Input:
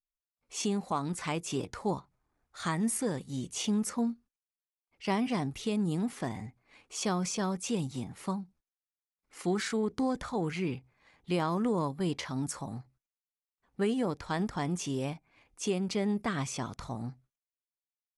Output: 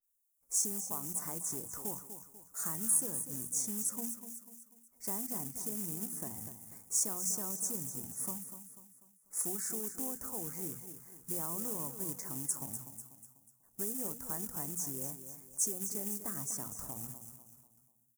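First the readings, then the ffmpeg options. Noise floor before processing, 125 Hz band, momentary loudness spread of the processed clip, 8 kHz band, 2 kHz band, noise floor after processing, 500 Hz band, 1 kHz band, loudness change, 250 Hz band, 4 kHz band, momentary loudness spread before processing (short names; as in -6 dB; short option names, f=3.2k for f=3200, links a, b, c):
under -85 dBFS, -12.5 dB, 16 LU, +7.0 dB, -16.0 dB, -70 dBFS, -13.0 dB, -13.5 dB, -2.5 dB, -13.0 dB, -11.0 dB, 10 LU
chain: -af "highshelf=f=2.6k:g=-8.5,bandreject=f=60:t=h:w=6,bandreject=f=120:t=h:w=6,bandreject=f=180:t=h:w=6,bandreject=f=240:t=h:w=6,acompressor=threshold=-47dB:ratio=2,asuperstop=centerf=2900:order=4:qfactor=1.2,aecho=1:1:246|492|738|984:0.299|0.125|0.0527|0.0221,acrusher=bits=4:mode=log:mix=0:aa=0.000001,aexciter=amount=9.7:drive=9.9:freq=6.4k,adynamicequalizer=threshold=0.00631:dfrequency=4600:dqfactor=0.7:tfrequency=4600:tqfactor=0.7:attack=5:release=100:ratio=0.375:range=1.5:mode=cutabove:tftype=highshelf,volume=-3dB"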